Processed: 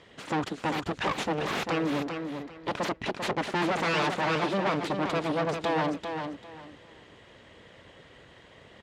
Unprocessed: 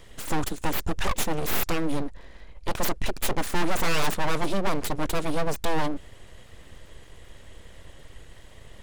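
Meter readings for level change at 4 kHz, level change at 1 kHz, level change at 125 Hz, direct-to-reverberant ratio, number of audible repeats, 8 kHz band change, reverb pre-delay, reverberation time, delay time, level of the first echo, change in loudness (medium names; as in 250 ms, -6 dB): -1.5 dB, +1.0 dB, -2.5 dB, no reverb, 3, -11.0 dB, no reverb, no reverb, 394 ms, -6.5 dB, -1.0 dB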